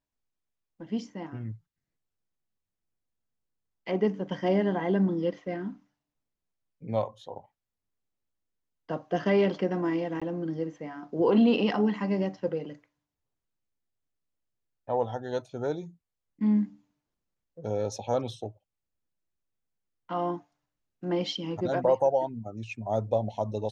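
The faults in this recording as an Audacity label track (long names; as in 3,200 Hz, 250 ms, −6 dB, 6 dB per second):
10.200000	10.220000	drop-out 16 ms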